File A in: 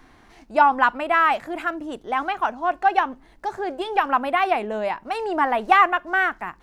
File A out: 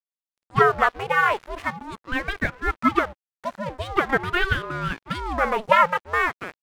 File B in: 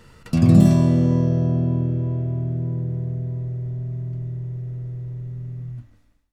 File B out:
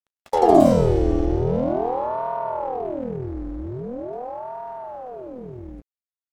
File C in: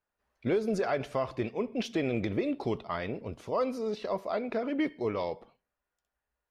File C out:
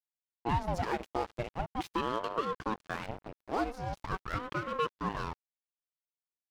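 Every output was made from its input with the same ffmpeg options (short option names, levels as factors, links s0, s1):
-af "aeval=exprs='sgn(val(0))*max(abs(val(0))-0.0112,0)':c=same,aeval=exprs='val(0)*sin(2*PI*490*n/s+490*0.65/0.43*sin(2*PI*0.43*n/s))':c=same,volume=1.26"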